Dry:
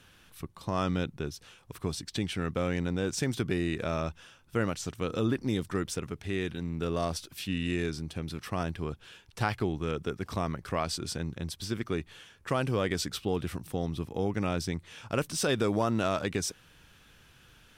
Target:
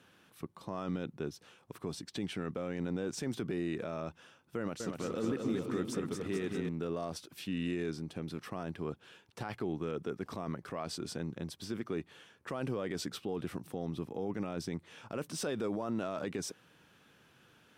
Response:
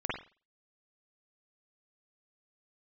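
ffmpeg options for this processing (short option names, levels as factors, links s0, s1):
-filter_complex "[0:a]highpass=180,tiltshelf=f=1500:g=4.5,alimiter=limit=0.075:level=0:latency=1:release=26,asettb=1/sr,asplit=3[s0][s1][s2];[s0]atrim=end=4.574[s3];[s1]atrim=start=4.57:end=6.69,asetpts=PTS-STARTPTS,afade=t=in:d=0.004:c=qsin,afade=t=out:st=2.116:d=0.004:c=qsin,aecho=1:1:230|437|623.3|791|941.9:0.631|0.398|0.251|0.158|0.1,atrim=end_sample=93492[s4];[s2]atrim=start=6.686[s5];[s3][s4]acrossfade=d=0.004:c1=hsin:c2=qsin[s6];[s6][s5]acrossfade=d=0.004:c1=qsin:c2=hsin,volume=0.631"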